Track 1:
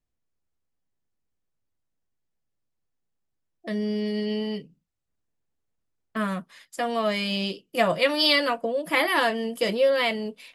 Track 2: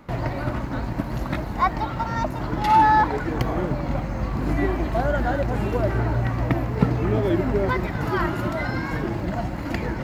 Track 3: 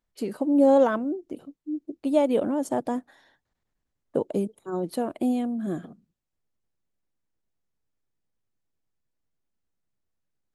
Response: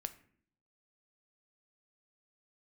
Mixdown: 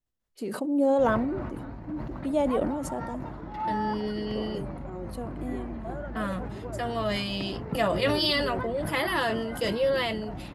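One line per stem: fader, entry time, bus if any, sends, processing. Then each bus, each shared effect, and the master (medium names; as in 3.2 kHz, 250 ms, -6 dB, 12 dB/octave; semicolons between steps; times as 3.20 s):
-5.0 dB, 0.00 s, no send, band-stop 2.3 kHz, Q 11
-13.5 dB, 0.90 s, no send, low-pass 1.4 kHz 6 dB/octave; hum notches 60/120 Hz
-7.5 dB, 0.20 s, send -6.5 dB, auto duck -17 dB, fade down 1.05 s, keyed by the first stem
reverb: on, RT60 0.60 s, pre-delay 8 ms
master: decay stretcher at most 31 dB/s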